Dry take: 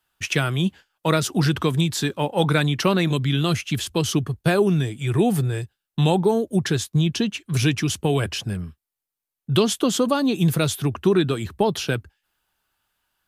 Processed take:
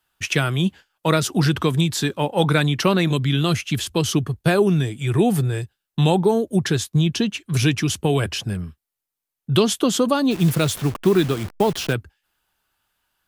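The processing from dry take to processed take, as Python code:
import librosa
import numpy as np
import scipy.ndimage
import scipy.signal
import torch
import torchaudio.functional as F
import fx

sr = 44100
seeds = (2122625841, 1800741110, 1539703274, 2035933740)

y = fx.delta_hold(x, sr, step_db=-31.0, at=(10.3, 11.92), fade=0.02)
y = y * 10.0 ** (1.5 / 20.0)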